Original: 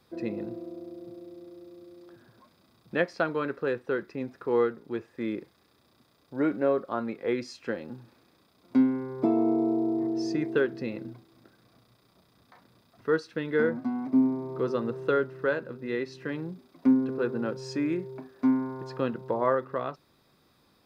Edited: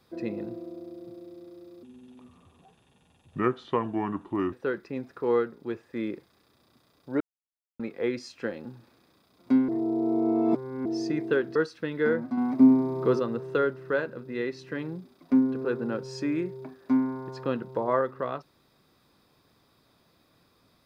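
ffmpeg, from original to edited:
-filter_complex "[0:a]asplit=10[a][b][c][d][e][f][g][h][i][j];[a]atrim=end=1.834[k];[b]atrim=start=1.83:end=3.77,asetpts=PTS-STARTPTS,asetrate=31752,aresample=44100[l];[c]atrim=start=3.766:end=6.45,asetpts=PTS-STARTPTS,afade=t=out:st=2.68:d=0.004:c=hsin[m];[d]atrim=start=6.45:end=7.04,asetpts=PTS-STARTPTS,volume=0[n];[e]atrim=start=7.04:end=8.932,asetpts=PTS-STARTPTS,afade=t=in:d=0.004:c=hsin[o];[f]atrim=start=8.928:end=10.102,asetpts=PTS-STARTPTS,areverse[p];[g]atrim=start=10.098:end=10.802[q];[h]atrim=start=13.088:end=13.912[r];[i]atrim=start=13.908:end=14.732,asetpts=PTS-STARTPTS,volume=5.5dB[s];[j]atrim=start=14.728[t];[k][l]acrossfade=d=0.004:c1=hsin:c2=hsin[u];[m][n][o]concat=n=3:v=0:a=1[v];[u][v]acrossfade=d=0.004:c1=hsin:c2=hsin[w];[w][p]acrossfade=d=0.004:c1=hsin:c2=hsin[x];[x][q]acrossfade=d=0.004:c1=hsin:c2=hsin[y];[y][r]acrossfade=d=0.004:c1=hsin:c2=hsin[z];[z][s]acrossfade=d=0.004:c1=hsin:c2=hsin[aa];[aa][t]acrossfade=d=0.004:c1=hsin:c2=hsin"

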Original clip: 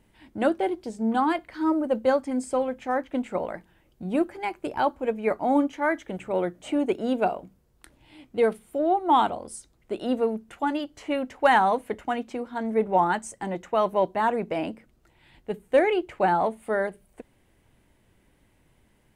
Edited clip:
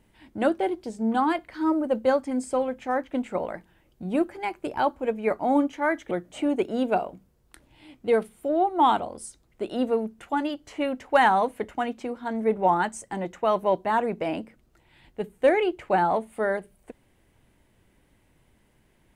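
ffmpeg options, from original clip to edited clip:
-filter_complex "[0:a]asplit=2[a][b];[a]atrim=end=6.112[c];[b]atrim=start=6.408[d];[c][d]acrossfade=d=0.004:c1=hsin:c2=hsin"

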